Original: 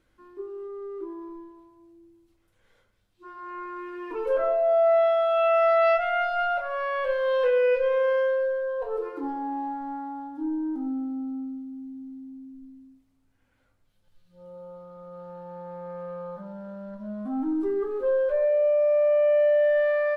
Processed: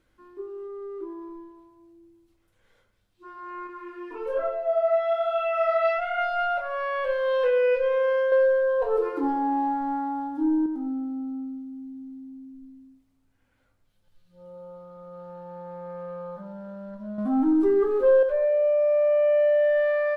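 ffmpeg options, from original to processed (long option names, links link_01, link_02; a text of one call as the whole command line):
ffmpeg -i in.wav -filter_complex "[0:a]asettb=1/sr,asplit=3[link_01][link_02][link_03];[link_01]atrim=end=3.674[link_04];[link_02]atrim=start=3.67:end=6.19,asetpts=PTS-STARTPTS,afade=type=in:duration=0.004:curve=qsin,afade=type=out:start_time=2.516:duration=0.004:curve=qsin,flanger=delay=20:depth=6.2:speed=1.1[link_05];[link_03]atrim=start=6.186[link_06];[link_04][link_05]acrossfade=duration=0.004:curve1=hsin:curve2=qsin[link_07];[link_07][link_06]acrossfade=duration=0.004:curve1=qsin:curve2=hsin,asettb=1/sr,asplit=3[link_08][link_09][link_10];[link_08]atrim=end=17.184[link_11];[link_09]atrim=start=17.18:end=18.23,asetpts=PTS-STARTPTS,afade=type=in:duration=0.004:curve=qsin,afade=type=out:start_time=1.046:duration=0.004:curve=qsin,acontrast=55[link_12];[link_10]atrim=start=18.226[link_13];[link_11][link_12]acrossfade=duration=0.004:curve1=hsin:curve2=qsin[link_14];[link_14][link_13]acrossfade=duration=0.004:curve1=qsin:curve2=hsin,asplit=3[link_15][link_16][link_17];[link_15]atrim=end=8.322[link_18];[link_16]atrim=start=8.318:end=10.662,asetpts=PTS-STARTPTS,volume=6dB[link_19];[link_17]atrim=start=10.658[link_20];[link_18][link_19]acrossfade=duration=0.004:curve1=hsin:curve2=hsin[link_21];[link_21][link_20]acrossfade=duration=0.004:curve1=hsin:curve2=hsin" out.wav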